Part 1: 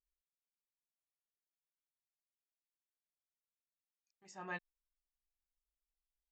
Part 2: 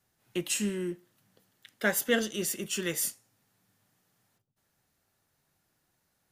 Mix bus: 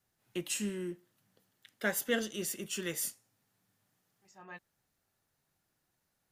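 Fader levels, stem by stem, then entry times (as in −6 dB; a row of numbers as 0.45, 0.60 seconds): −5.5, −5.0 decibels; 0.00, 0.00 seconds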